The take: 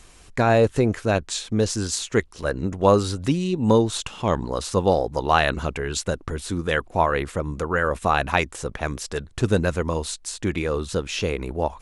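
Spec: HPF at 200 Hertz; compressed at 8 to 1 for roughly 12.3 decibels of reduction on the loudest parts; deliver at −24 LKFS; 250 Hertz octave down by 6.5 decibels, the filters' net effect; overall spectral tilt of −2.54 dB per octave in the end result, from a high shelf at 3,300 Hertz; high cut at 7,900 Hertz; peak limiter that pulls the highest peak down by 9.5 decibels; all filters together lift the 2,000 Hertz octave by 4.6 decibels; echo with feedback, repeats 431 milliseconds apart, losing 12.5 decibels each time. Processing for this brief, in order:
high-pass filter 200 Hz
low-pass filter 7,900 Hz
parametric band 250 Hz −6.5 dB
parametric band 2,000 Hz +4 dB
high-shelf EQ 3,300 Hz +7 dB
downward compressor 8 to 1, threshold −24 dBFS
brickwall limiter −18 dBFS
repeating echo 431 ms, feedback 24%, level −12.5 dB
level +7 dB

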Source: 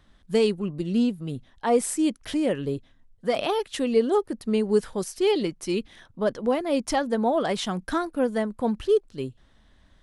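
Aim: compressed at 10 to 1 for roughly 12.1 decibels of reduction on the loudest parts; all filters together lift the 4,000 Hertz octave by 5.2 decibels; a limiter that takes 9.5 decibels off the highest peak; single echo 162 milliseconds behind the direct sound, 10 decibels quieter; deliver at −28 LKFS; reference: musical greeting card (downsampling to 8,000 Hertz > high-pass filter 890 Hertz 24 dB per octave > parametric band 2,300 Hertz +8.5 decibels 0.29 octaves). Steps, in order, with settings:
parametric band 4,000 Hz +6 dB
downward compressor 10 to 1, threshold −28 dBFS
brickwall limiter −27 dBFS
single-tap delay 162 ms −10 dB
downsampling to 8,000 Hz
high-pass filter 890 Hz 24 dB per octave
parametric band 2,300 Hz +8.5 dB 0.29 octaves
level +16 dB

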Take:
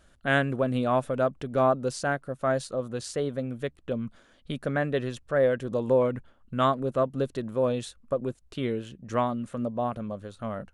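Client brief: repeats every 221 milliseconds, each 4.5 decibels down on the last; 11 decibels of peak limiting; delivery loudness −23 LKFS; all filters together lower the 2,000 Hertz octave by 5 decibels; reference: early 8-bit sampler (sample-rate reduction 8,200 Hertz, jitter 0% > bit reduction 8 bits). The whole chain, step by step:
parametric band 2,000 Hz −7 dB
brickwall limiter −22.5 dBFS
repeating echo 221 ms, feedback 60%, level −4.5 dB
sample-rate reduction 8,200 Hz, jitter 0%
bit reduction 8 bits
level +8.5 dB

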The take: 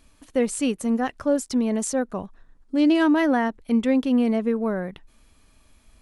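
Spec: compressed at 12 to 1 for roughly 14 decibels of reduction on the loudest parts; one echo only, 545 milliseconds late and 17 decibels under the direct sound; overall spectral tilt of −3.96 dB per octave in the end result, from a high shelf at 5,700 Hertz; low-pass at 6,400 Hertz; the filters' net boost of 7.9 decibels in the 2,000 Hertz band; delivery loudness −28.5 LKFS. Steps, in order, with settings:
low-pass filter 6,400 Hz
parametric band 2,000 Hz +9 dB
high-shelf EQ 5,700 Hz +7 dB
downward compressor 12 to 1, threshold −29 dBFS
single-tap delay 545 ms −17 dB
level +5 dB

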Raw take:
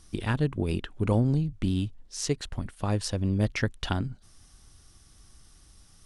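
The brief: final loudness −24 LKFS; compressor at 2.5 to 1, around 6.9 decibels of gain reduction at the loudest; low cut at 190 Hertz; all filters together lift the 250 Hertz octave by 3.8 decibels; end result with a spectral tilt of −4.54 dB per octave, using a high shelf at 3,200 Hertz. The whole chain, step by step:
high-pass filter 190 Hz
parametric band 250 Hz +7 dB
high-shelf EQ 3,200 Hz +4 dB
downward compressor 2.5 to 1, threshold −29 dBFS
level +9 dB

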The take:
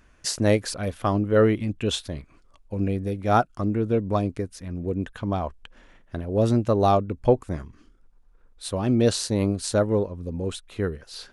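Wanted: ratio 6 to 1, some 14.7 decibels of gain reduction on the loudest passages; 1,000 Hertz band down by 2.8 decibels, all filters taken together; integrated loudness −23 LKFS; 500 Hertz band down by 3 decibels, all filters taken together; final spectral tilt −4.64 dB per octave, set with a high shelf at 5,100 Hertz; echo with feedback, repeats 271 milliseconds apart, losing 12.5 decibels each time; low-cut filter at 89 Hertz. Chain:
high-pass filter 89 Hz
parametric band 500 Hz −3 dB
parametric band 1,000 Hz −3 dB
high-shelf EQ 5,100 Hz +6 dB
downward compressor 6 to 1, threshold −32 dBFS
repeating echo 271 ms, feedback 24%, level −12.5 dB
level +13.5 dB

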